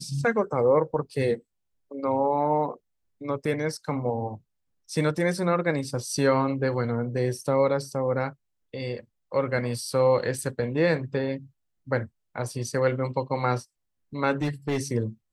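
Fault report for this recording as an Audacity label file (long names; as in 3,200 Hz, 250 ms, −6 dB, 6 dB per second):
14.320000	14.820000	clipping −21.5 dBFS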